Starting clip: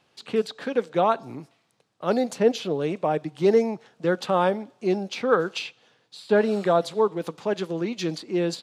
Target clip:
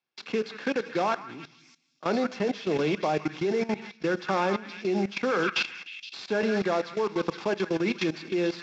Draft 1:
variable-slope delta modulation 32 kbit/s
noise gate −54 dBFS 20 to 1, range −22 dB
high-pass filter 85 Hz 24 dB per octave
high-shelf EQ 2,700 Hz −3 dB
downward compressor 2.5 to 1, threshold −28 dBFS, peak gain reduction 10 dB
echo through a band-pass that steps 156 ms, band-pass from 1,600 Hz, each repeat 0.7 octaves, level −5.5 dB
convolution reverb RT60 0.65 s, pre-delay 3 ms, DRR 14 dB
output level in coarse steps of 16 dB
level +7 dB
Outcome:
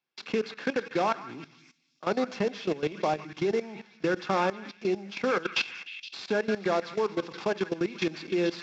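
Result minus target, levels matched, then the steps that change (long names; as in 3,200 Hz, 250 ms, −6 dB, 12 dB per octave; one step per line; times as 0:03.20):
downward compressor: peak gain reduction +5 dB
change: downward compressor 2.5 to 1, threshold −19.5 dBFS, peak gain reduction 4.5 dB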